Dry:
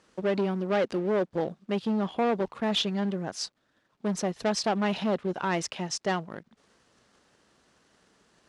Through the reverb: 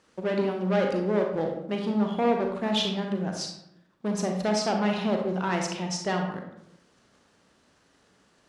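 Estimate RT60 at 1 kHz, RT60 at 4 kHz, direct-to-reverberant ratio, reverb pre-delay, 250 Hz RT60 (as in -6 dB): 0.70 s, 0.45 s, 2.0 dB, 32 ms, 1.0 s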